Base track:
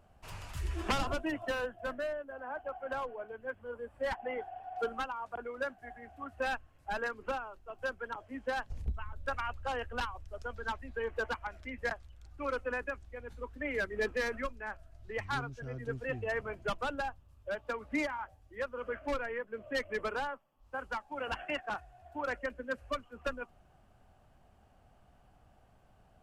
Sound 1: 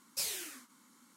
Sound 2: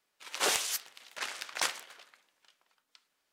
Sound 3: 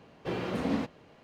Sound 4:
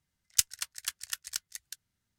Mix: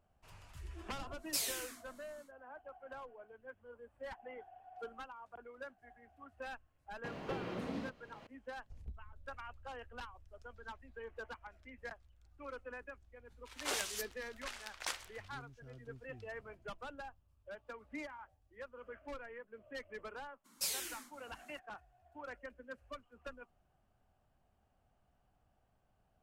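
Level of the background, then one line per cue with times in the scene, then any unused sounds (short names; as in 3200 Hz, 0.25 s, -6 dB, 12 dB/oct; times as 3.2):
base track -12 dB
1.16 add 1 -0.5 dB, fades 0.10 s
7.04 add 3 -9.5 dB + three-band squash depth 100%
13.25 add 2 -9 dB
20.44 add 1 -1.5 dB, fades 0.02 s
not used: 4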